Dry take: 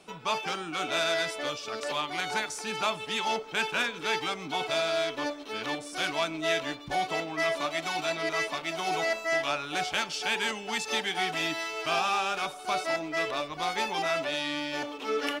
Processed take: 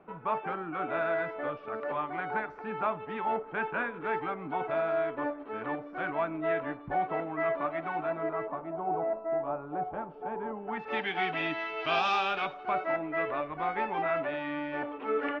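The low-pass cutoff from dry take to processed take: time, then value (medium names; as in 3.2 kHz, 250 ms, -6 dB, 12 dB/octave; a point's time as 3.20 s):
low-pass 24 dB/octave
7.90 s 1.7 kHz
8.81 s 1 kHz
10.52 s 1 kHz
11.04 s 2.7 kHz
11.76 s 2.7 kHz
12.10 s 4.9 kHz
12.75 s 2 kHz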